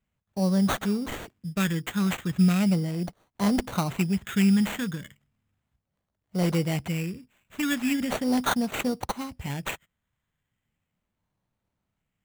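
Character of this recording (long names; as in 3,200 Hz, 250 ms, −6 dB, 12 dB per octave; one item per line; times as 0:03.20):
phaser sweep stages 4, 0.37 Hz, lowest notch 630–2,300 Hz
aliases and images of a low sample rate 5,100 Hz, jitter 0%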